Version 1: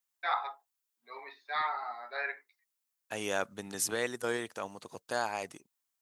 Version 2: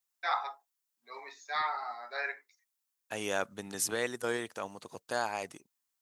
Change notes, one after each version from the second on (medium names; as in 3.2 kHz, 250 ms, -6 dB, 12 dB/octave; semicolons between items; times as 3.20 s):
first voice: remove steep low-pass 4.1 kHz 36 dB/octave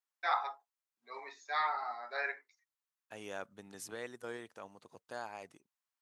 second voice -10.0 dB; master: add treble shelf 3.8 kHz -6.5 dB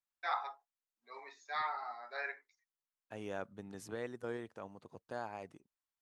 first voice -4.0 dB; second voice: add tilt EQ -2.5 dB/octave